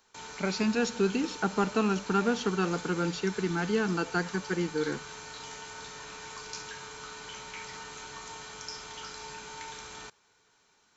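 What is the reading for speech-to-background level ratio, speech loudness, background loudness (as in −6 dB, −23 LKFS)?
11.5 dB, −30.0 LKFS, −41.5 LKFS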